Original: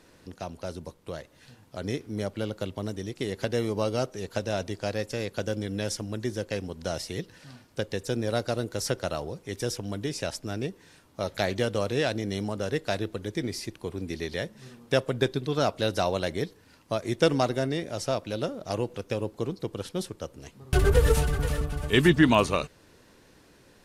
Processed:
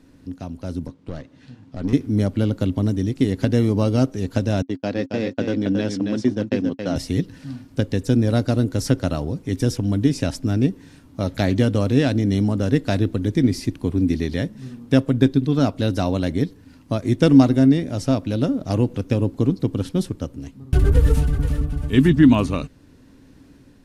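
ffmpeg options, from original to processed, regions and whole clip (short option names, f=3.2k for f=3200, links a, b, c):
-filter_complex "[0:a]asettb=1/sr,asplit=3[a][b][c];[a]atrim=end=0.874[d];[b]atrim=start=0.87:end=1.93,asetpts=PTS-STARTPTS,afade=t=in:d=0.004:c=qsin,afade=t=out:st=1.056:d=0.004:c=qsin,highpass=110,lowpass=5.5k,aeval=exprs='(tanh(44.7*val(0)+0.55)-tanh(0.55))/44.7':c=same[e];[c]atrim=start=1.926[f];[d][e]acrossfade=d=0.004:c1=hsin:c2=qsin[g];[g][f]acrossfade=d=0.004:c1=qsin:c2=hsin,asettb=1/sr,asplit=3[h][i][j];[h]atrim=end=4.624[k];[i]atrim=start=4.62:end=6.96,asetpts=PTS-STARTPTS,afade=t=in:d=0.004:c=qsin,afade=t=out:st=2.336:d=0.004:c=qsin,agate=range=-42dB:threshold=-37dB:ratio=16:release=100:detection=peak,highpass=200,lowpass=4.6k,aecho=1:1:274:0.531,atrim=end_sample=103194[l];[j]atrim=start=6.956[m];[k][l]acrossfade=d=0.004:c1=hsin:c2=qsin[n];[n][m]acrossfade=d=0.004:c1=qsin:c2=hsin,bass=f=250:g=12,treble=f=4k:g=-1,dynaudnorm=f=560:g=3:m=7.5dB,equalizer=f=270:t=o:w=0.28:g=14,volume=-3.5dB"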